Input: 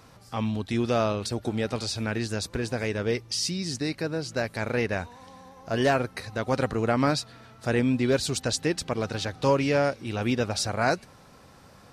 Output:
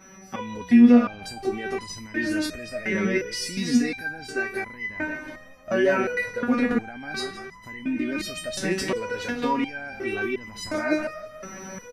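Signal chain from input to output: whistle 5.9 kHz -51 dBFS; graphic EQ 125/250/1000/2000/4000/8000 Hz -6/+10/-3/+9/-8/-10 dB; level rider gain up to 11 dB; on a send: frequency-shifting echo 167 ms, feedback 46%, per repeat -33 Hz, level -15.5 dB; on the sum: loudness maximiser +13 dB; resonator arpeggio 2.8 Hz 190–1000 Hz; trim +2 dB

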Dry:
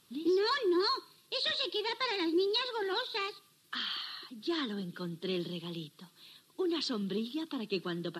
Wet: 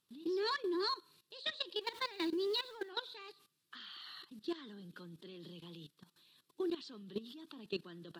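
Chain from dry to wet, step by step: 1.81–2.89 s: jump at every zero crossing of -43.5 dBFS; level held to a coarse grid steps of 16 dB; trim -3 dB

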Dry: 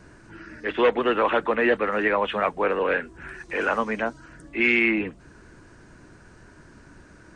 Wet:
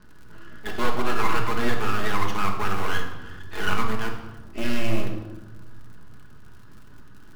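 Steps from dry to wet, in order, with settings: treble shelf 4.1 kHz -8.5 dB; static phaser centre 2.2 kHz, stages 6; half-wave rectifier; in parallel at -7.5 dB: bit crusher 5-bit; on the sum: crackle 66 per s -42 dBFS; on a send at -1 dB: reverberation RT60 1.1 s, pre-delay 5 ms

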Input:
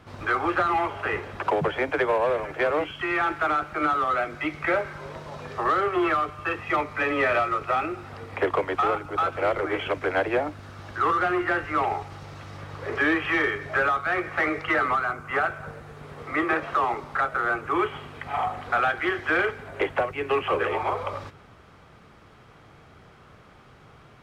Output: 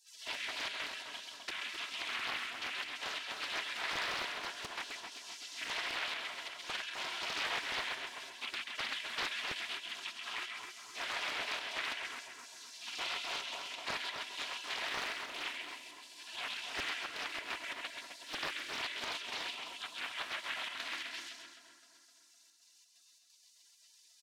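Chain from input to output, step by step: in parallel at -0.5 dB: compressor with a negative ratio -27 dBFS, ratio -0.5; on the sum: bass shelf 320 Hz -9.5 dB; spectral gate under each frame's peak -25 dB weak; comb 3 ms, depth 59%; trance gate "xxxxxx.xx.xx.xxx" 132 bpm -12 dB; frequency weighting A; on a send: two-band feedback delay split 1.5 kHz, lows 257 ms, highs 133 ms, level -3.5 dB; on the sum: loudspeaker Doppler distortion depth 0.76 ms

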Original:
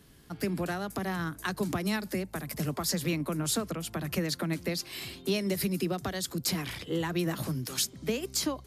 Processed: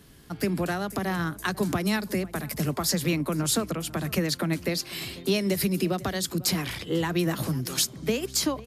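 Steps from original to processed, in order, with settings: echo from a far wall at 85 m, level -19 dB; trim +4.5 dB

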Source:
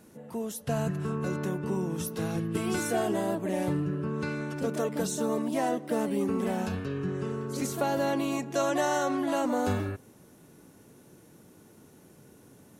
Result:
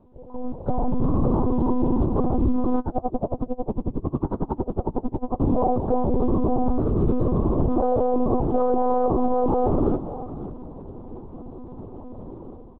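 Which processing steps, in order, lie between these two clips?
octave divider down 2 oct, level +4 dB; steep low-pass 1.1 kHz 48 dB/octave; bass shelf 89 Hz -11 dB; comb 5.7 ms, depth 48%; compression 2:1, threshold -32 dBFS, peak gain reduction 6 dB; peak limiter -29.5 dBFS, peak gain reduction 9 dB; level rider gain up to 16.5 dB; companded quantiser 8-bit; multi-tap echo 203/551 ms -16.5/-14 dB; monotone LPC vocoder at 8 kHz 250 Hz; 2.79–5.40 s: logarithmic tremolo 11 Hz, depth 26 dB

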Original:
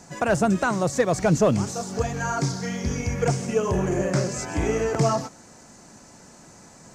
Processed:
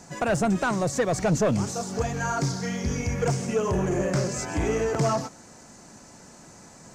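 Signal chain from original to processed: saturation -16.5 dBFS, distortion -15 dB

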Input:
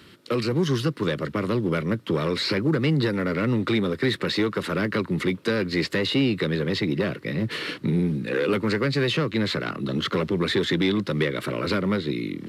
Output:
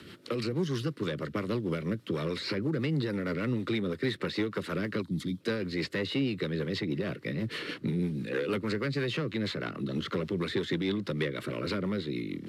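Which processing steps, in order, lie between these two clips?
time-frequency box 5.02–5.40 s, 330–3100 Hz -13 dB; rotary cabinet horn 6.3 Hz; three bands compressed up and down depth 40%; trim -6 dB

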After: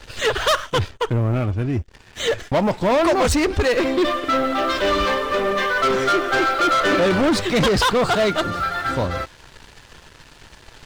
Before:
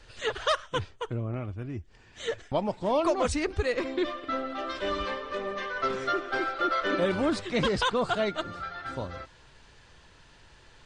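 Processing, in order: waveshaping leveller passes 3; trim +3.5 dB

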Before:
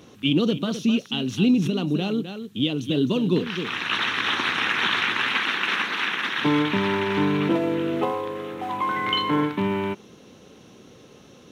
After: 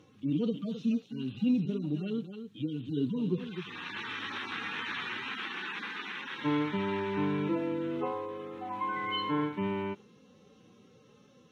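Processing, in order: harmonic-percussive separation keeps harmonic; treble shelf 8.4 kHz -11 dB; band-stop 680 Hz, Q 12; trim -8 dB

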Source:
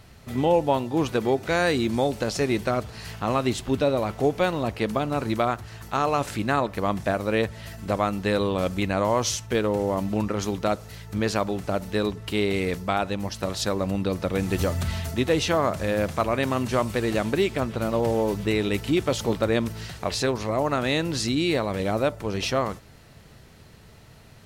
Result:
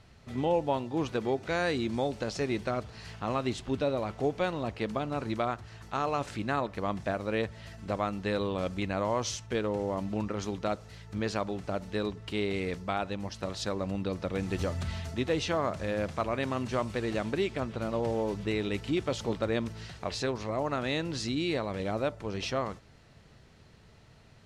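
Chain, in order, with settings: low-pass 7 kHz 12 dB/octave; trim -7 dB

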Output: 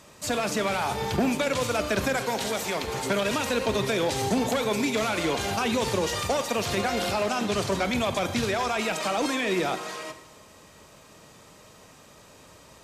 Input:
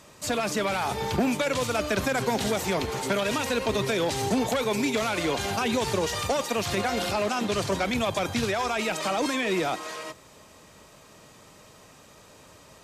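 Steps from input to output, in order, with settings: 2.16–2.87 s: bass shelf 350 Hz -9.5 dB; Schroeder reverb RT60 1.1 s, combs from 33 ms, DRR 10.5 dB

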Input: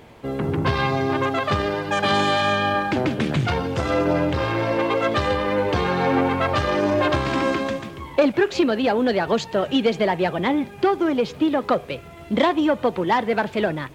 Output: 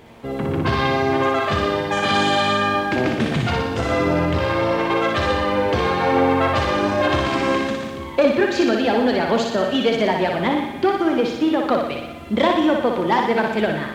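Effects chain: thinning echo 60 ms, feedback 62%, high-pass 370 Hz, level -3.5 dB; on a send at -9 dB: reverberation RT60 1.5 s, pre-delay 4 ms

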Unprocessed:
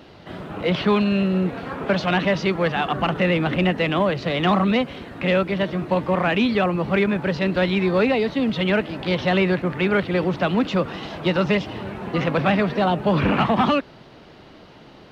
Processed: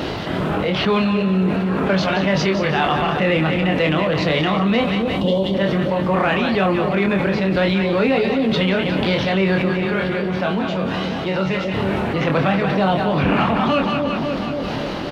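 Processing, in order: 5.02–5.54 s: spectral selection erased 1.1–2.8 kHz; 9.73–11.74 s: chord resonator D2 major, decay 0.24 s; tremolo 2.1 Hz, depth 68%; doubling 26 ms -5 dB; two-band feedback delay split 670 Hz, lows 269 ms, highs 180 ms, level -10 dB; level flattener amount 70%

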